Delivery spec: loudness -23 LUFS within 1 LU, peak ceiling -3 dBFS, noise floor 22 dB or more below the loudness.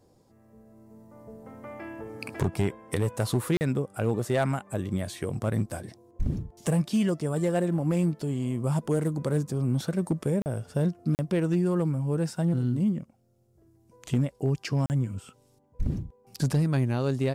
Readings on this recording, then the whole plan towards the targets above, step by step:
clipped samples 0.6%; clipping level -18.0 dBFS; dropouts 4; longest dropout 39 ms; loudness -28.5 LUFS; peak level -18.0 dBFS; loudness target -23.0 LUFS
-> clip repair -18 dBFS; interpolate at 3.57/10.42/11.15/14.86 s, 39 ms; trim +5.5 dB

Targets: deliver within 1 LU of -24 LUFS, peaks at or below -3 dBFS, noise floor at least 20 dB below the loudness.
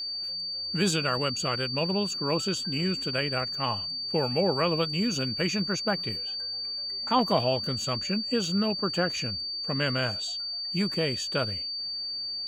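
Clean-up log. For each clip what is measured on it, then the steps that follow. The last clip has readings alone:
steady tone 4.6 kHz; tone level -31 dBFS; loudness -27.5 LUFS; peak level -11.0 dBFS; loudness target -24.0 LUFS
-> band-stop 4.6 kHz, Q 30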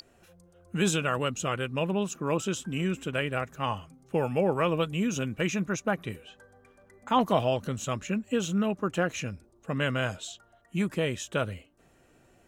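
steady tone not found; loudness -29.5 LUFS; peak level -11.5 dBFS; loudness target -24.0 LUFS
-> trim +5.5 dB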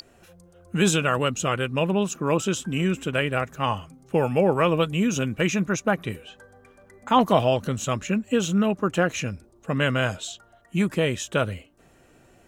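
loudness -24.0 LUFS; peak level -6.5 dBFS; noise floor -57 dBFS

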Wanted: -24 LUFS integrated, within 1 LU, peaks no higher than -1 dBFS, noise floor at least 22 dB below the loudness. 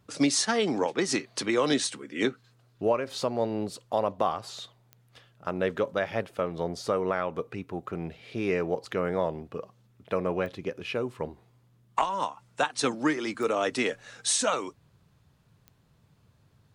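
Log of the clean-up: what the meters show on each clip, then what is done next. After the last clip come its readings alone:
clicks found 4; loudness -29.5 LUFS; peak level -10.5 dBFS; loudness target -24.0 LUFS
-> de-click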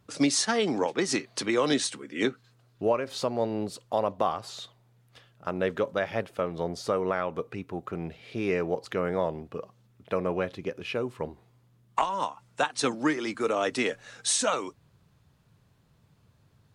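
clicks found 0; loudness -29.5 LUFS; peak level -10.5 dBFS; loudness target -24.0 LUFS
-> trim +5.5 dB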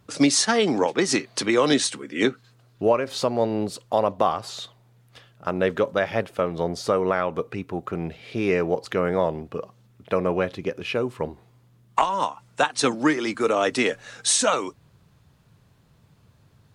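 loudness -24.0 LUFS; peak level -5.0 dBFS; noise floor -59 dBFS

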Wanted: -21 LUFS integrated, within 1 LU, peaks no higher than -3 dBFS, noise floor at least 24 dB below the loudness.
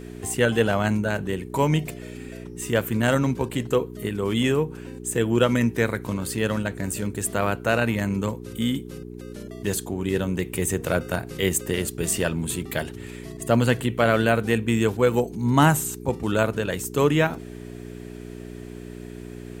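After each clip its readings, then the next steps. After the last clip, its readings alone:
hum 60 Hz; highest harmonic 420 Hz; hum level -35 dBFS; loudness -24.0 LUFS; peak level -4.0 dBFS; loudness target -21.0 LUFS
-> de-hum 60 Hz, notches 7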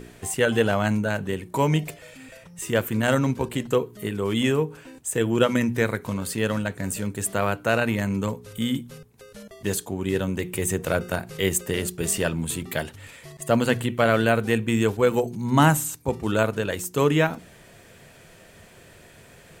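hum not found; loudness -24.5 LUFS; peak level -4.5 dBFS; loudness target -21.0 LUFS
-> trim +3.5 dB; peak limiter -3 dBFS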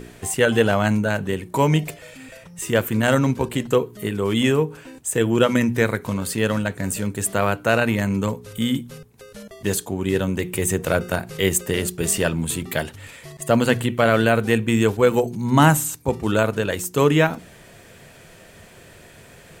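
loudness -21.0 LUFS; peak level -3.0 dBFS; noise floor -47 dBFS

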